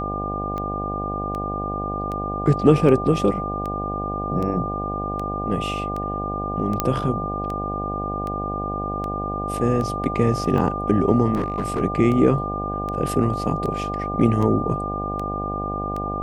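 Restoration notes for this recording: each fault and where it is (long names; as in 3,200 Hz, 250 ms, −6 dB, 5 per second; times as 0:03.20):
mains buzz 50 Hz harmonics 16 −29 dBFS
scratch tick 78 rpm −18 dBFS
whistle 1,200 Hz −27 dBFS
0:06.80: click −5 dBFS
0:11.35–0:11.80: clipping −19 dBFS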